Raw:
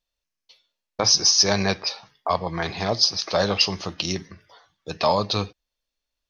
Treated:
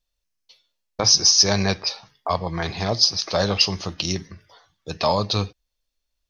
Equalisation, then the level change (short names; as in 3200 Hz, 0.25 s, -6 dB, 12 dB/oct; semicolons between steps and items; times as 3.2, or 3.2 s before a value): tone controls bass -2 dB, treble +4 dB; low shelf 140 Hz +11.5 dB; -1.0 dB